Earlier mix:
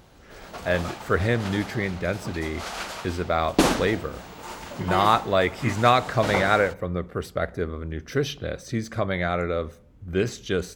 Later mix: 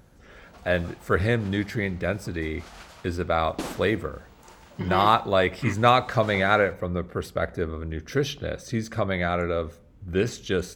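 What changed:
background -12.0 dB; reverb: off

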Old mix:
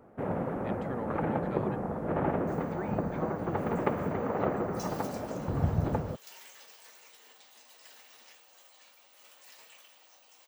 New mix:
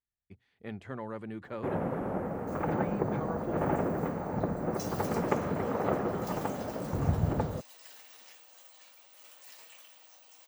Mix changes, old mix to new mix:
first sound: entry +1.45 s; master: add high shelf 8800 Hz +5 dB

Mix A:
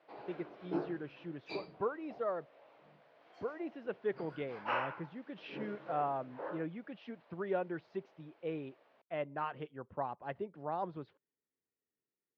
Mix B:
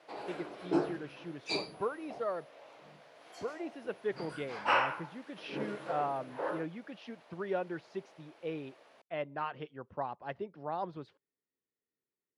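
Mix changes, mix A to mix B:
background +6.0 dB; master: remove air absorption 240 m

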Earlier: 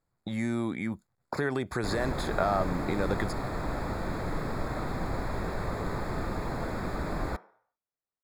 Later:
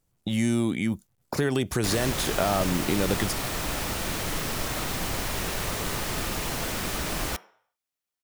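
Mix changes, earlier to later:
speech: add tilt shelf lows +7.5 dB, about 780 Hz; master: remove running mean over 15 samples

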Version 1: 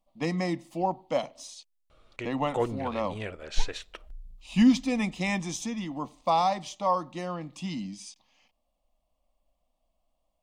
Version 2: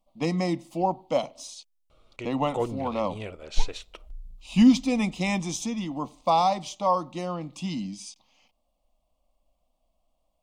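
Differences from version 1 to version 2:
speech +3.0 dB; master: add bell 1700 Hz -11 dB 0.39 oct

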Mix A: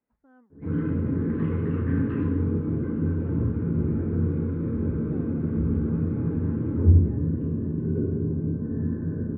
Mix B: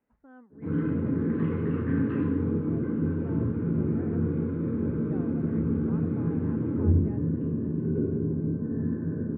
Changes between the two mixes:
speech +5.5 dB; background: add HPF 120 Hz 12 dB/oct

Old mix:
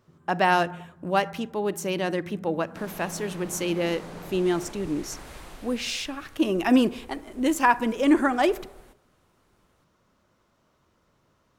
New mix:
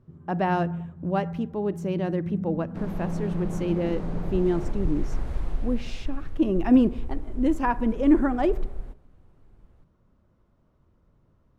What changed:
speech -6.0 dB; master: add tilt -4 dB/oct

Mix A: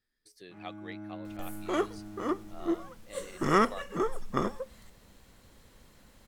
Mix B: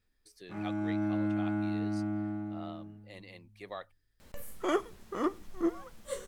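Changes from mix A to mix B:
first sound +11.5 dB; second sound: entry +2.95 s

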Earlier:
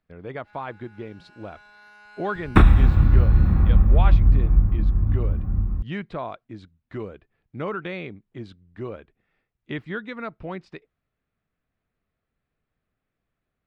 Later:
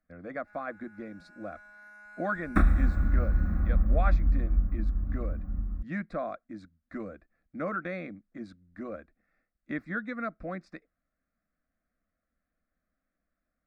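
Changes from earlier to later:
first sound: add bell 4400 Hz -12 dB 0.51 oct; second sound -6.5 dB; master: add fixed phaser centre 610 Hz, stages 8

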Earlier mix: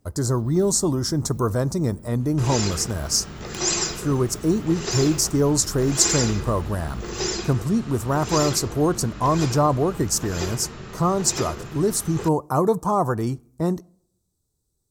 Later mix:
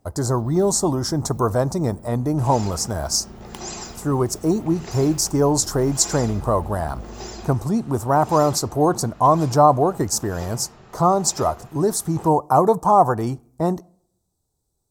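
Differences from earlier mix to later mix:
second sound -11.5 dB; master: add bell 770 Hz +10.5 dB 0.85 oct

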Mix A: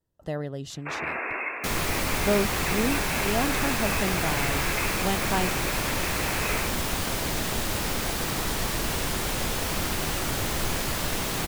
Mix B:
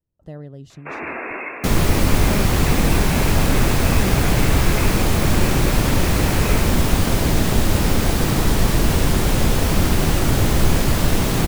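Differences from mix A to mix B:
speech -11.5 dB; second sound +4.0 dB; master: add low shelf 450 Hz +11.5 dB

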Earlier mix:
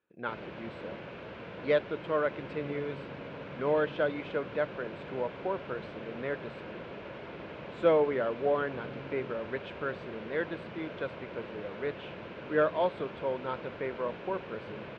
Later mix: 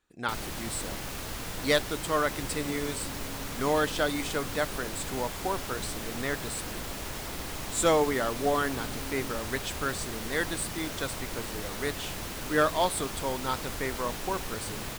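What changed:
second sound: add Chebyshev high-pass 160 Hz, order 8; master: remove speaker cabinet 170–2400 Hz, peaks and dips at 270 Hz -7 dB, 540 Hz +4 dB, 790 Hz -8 dB, 1200 Hz -7 dB, 1900 Hz -8 dB

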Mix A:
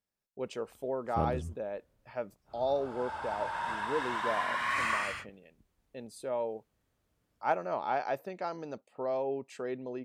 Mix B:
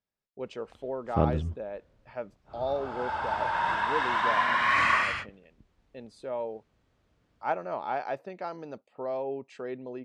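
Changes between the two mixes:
background +7.5 dB; master: add LPF 4900 Hz 12 dB/oct

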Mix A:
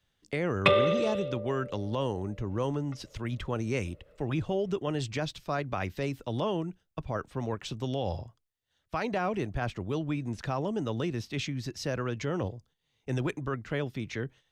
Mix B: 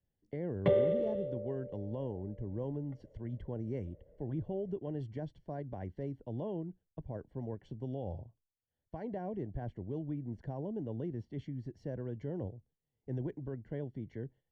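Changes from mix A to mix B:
speech -6.0 dB; master: add running mean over 35 samples

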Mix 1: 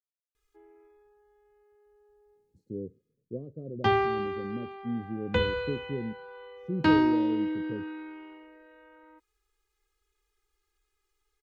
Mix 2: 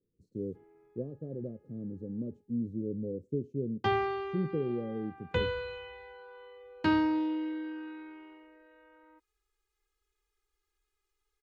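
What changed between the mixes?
speech: entry -2.35 s; background -4.5 dB

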